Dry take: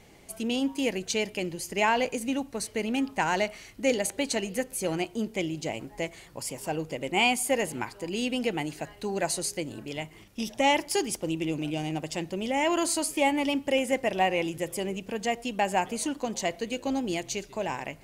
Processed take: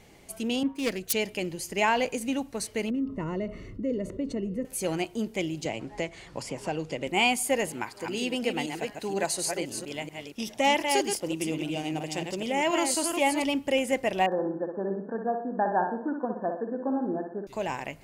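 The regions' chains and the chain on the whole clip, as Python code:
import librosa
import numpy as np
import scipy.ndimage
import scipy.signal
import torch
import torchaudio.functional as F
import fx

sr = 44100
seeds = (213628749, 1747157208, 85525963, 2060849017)

y = fx.chain(x, sr, fx.self_delay(depth_ms=0.15),
    fx.peak_eq(hz=860.0, db=-5.5, octaves=0.35),
    fx.band_widen(depth_pct=100), at=(0.63, 1.13))
y = fx.chain(y, sr, fx.moving_average(points=55),
    fx.env_flatten(amount_pct=50), at=(2.9, 4.65))
y = fx.chain(y, sr, fx.lowpass(hz=6700.0, slope=12),
    fx.band_squash(depth_pct=70), at=(5.65, 7.07))
y = fx.chain(y, sr, fx.reverse_delay(ms=238, wet_db=-5.0),
    fx.low_shelf(hz=120.0, db=-10.0), at=(7.71, 13.44))
y = fx.chain(y, sr, fx.brickwall_bandpass(low_hz=160.0, high_hz=1800.0),
    fx.echo_feedback(ms=61, feedback_pct=45, wet_db=-6), at=(14.26, 17.47))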